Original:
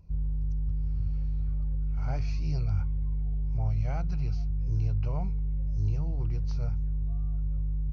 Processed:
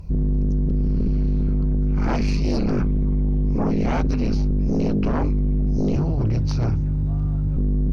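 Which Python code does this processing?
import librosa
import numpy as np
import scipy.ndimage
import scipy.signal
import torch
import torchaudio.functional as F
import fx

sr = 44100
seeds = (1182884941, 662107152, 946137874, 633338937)

y = fx.highpass(x, sr, hz=65.0, slope=24, at=(5.96, 7.57))
y = fx.fold_sine(y, sr, drive_db=12, ceiling_db=-18.0)
y = y * librosa.db_to_amplitude(1.5)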